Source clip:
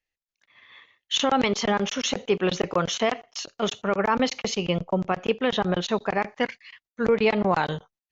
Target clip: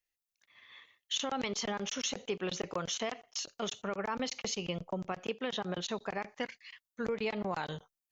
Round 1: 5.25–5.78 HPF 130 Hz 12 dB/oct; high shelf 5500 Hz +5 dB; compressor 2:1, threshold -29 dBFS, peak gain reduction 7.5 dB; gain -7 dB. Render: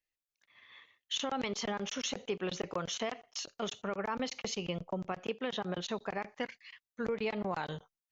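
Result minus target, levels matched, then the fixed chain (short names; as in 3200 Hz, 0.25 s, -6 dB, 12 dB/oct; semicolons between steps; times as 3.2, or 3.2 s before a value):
8000 Hz band -2.5 dB
5.25–5.78 HPF 130 Hz 12 dB/oct; high shelf 5500 Hz +12.5 dB; compressor 2:1, threshold -29 dBFS, peak gain reduction 7.5 dB; gain -7 dB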